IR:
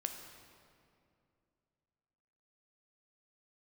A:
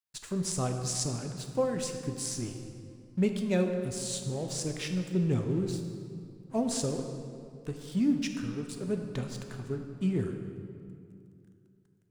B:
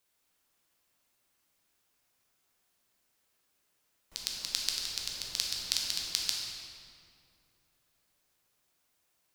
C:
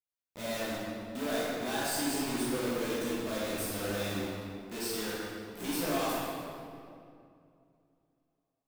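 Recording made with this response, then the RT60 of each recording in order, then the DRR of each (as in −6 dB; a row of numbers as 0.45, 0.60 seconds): A; 2.5, 2.5, 2.4 seconds; 4.5, −2.5, −9.0 decibels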